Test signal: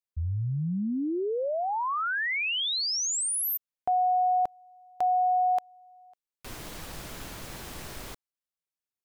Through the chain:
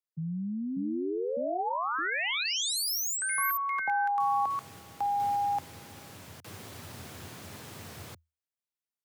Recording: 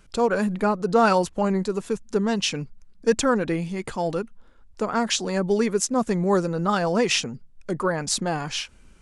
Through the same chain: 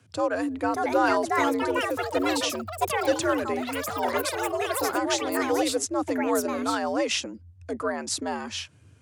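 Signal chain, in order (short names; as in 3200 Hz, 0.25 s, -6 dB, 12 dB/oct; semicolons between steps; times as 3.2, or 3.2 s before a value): echoes that change speed 0.641 s, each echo +6 st, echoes 3; frequency shift +80 Hz; gain -4.5 dB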